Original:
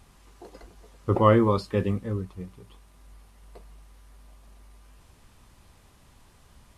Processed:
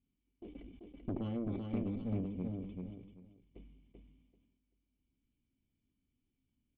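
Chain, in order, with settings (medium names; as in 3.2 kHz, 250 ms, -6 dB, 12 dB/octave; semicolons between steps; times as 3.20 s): gate -46 dBFS, range -25 dB; cascade formant filter i; compression 20:1, threshold -42 dBFS, peak gain reduction 19 dB; valve stage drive 43 dB, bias 0.8; feedback delay 387 ms, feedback 20%, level -4 dB; decay stretcher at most 53 dB/s; trim +12.5 dB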